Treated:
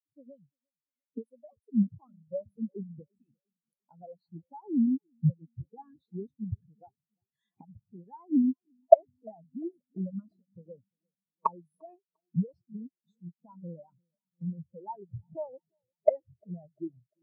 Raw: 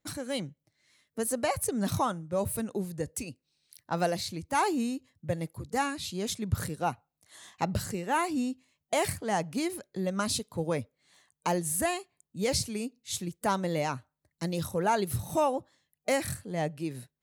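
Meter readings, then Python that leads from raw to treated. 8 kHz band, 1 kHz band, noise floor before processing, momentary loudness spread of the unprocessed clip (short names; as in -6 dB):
under -40 dB, -6.0 dB, -85 dBFS, 9 LU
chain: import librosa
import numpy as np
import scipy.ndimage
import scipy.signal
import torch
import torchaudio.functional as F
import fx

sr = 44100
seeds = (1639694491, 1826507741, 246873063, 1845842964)

p1 = fx.recorder_agc(x, sr, target_db=-18.0, rise_db_per_s=48.0, max_gain_db=30)
p2 = p1 + fx.echo_filtered(p1, sr, ms=348, feedback_pct=75, hz=2800.0, wet_db=-11, dry=0)
p3 = fx.spectral_expand(p2, sr, expansion=4.0)
y = F.gain(torch.from_numpy(p3), -7.5).numpy()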